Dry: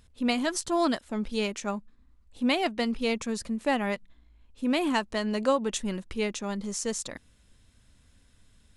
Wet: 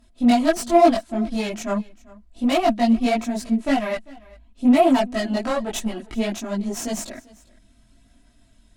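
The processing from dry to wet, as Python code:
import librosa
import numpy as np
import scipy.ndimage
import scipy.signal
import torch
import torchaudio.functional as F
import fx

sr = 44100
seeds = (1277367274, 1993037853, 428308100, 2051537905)

p1 = fx.peak_eq(x, sr, hz=240.0, db=-3.5, octaves=0.23)
p2 = p1 + 0.58 * np.pad(p1, (int(3.1 * sr / 1000.0), 0))[:len(p1)]
p3 = fx.cheby_harmonics(p2, sr, harmonics=(6,), levels_db=(-15,), full_scale_db=-11.5)
p4 = fx.chorus_voices(p3, sr, voices=4, hz=0.77, base_ms=21, depth_ms=4.2, mix_pct=60)
p5 = np.clip(p4, -10.0 ** (-26.5 / 20.0), 10.0 ** (-26.5 / 20.0))
p6 = p4 + (p5 * librosa.db_to_amplitude(-6.5))
p7 = fx.small_body(p6, sr, hz=(220.0, 680.0), ring_ms=45, db=13)
y = p7 + fx.echo_single(p7, sr, ms=395, db=-23.0, dry=0)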